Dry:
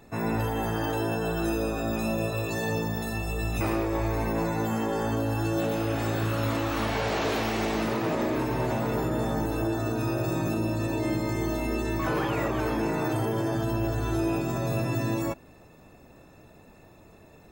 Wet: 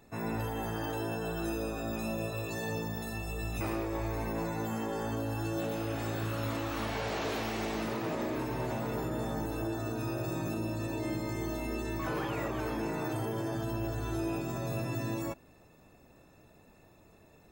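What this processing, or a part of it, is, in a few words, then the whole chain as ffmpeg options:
exciter from parts: -filter_complex "[0:a]asplit=2[s0][s1];[s1]highpass=f=4800:p=1,asoftclip=type=tanh:threshold=0.01,volume=0.398[s2];[s0][s2]amix=inputs=2:normalize=0,volume=0.447"

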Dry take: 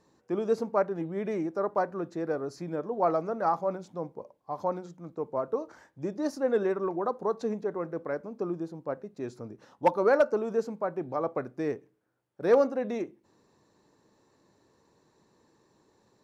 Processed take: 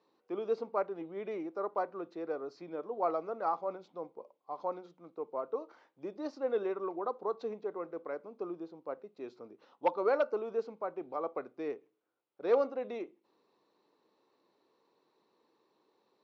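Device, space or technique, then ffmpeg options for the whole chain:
phone earpiece: -af "highpass=410,equalizer=f=610:t=q:w=4:g=-4,equalizer=f=880:t=q:w=4:g=-3,equalizer=f=1700:t=q:w=4:g=-10,lowpass=f=4200:w=0.5412,lowpass=f=4200:w=1.3066,volume=0.75"

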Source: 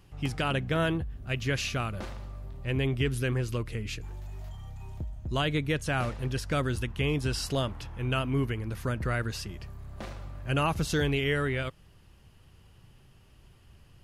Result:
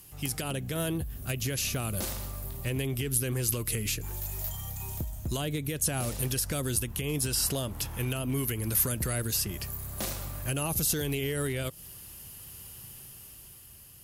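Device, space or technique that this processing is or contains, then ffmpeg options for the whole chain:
FM broadcast chain: -filter_complex "[0:a]highpass=f=58:p=1,dynaudnorm=f=210:g=9:m=1.88,acrossover=split=760|2600[s0][s1][s2];[s0]acompressor=threshold=0.0501:ratio=4[s3];[s1]acompressor=threshold=0.00631:ratio=4[s4];[s2]acompressor=threshold=0.00631:ratio=4[s5];[s3][s4][s5]amix=inputs=3:normalize=0,aemphasis=mode=production:type=50fm,alimiter=limit=0.075:level=0:latency=1:release=135,asoftclip=type=hard:threshold=0.0631,lowpass=f=15000:w=0.5412,lowpass=f=15000:w=1.3066,aemphasis=mode=production:type=50fm"

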